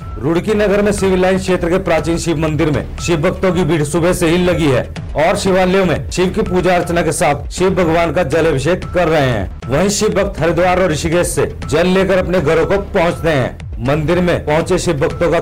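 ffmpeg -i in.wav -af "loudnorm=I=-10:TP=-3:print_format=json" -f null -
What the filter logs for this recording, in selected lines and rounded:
"input_i" : "-14.4",
"input_tp" : "-5.6",
"input_lra" : "1.0",
"input_thresh" : "-24.4",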